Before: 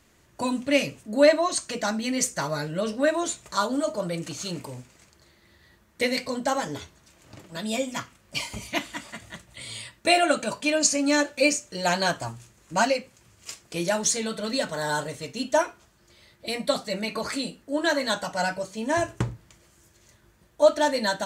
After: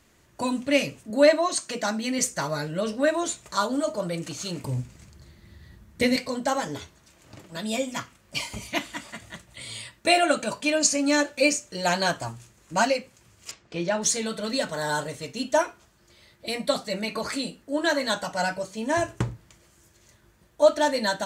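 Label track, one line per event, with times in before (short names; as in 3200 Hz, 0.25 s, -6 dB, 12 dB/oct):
1.100000	2.190000	HPF 140 Hz
4.640000	6.160000	tone controls bass +14 dB, treble +1 dB
13.510000	14.020000	air absorption 160 m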